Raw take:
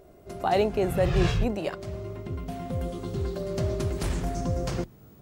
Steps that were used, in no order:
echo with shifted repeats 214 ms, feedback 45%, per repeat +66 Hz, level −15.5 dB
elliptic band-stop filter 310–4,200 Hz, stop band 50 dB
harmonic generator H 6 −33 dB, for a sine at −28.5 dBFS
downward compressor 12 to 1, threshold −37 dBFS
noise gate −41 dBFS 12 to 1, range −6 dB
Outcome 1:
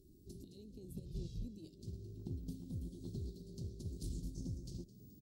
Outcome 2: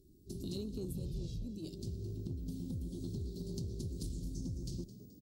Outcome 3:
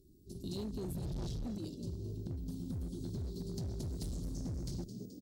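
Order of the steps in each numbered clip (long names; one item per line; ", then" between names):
downward compressor, then elliptic band-stop filter, then echo with shifted repeats, then harmonic generator, then noise gate
noise gate, then elliptic band-stop filter, then downward compressor, then harmonic generator, then echo with shifted repeats
elliptic band-stop filter, then noise gate, then echo with shifted repeats, then harmonic generator, then downward compressor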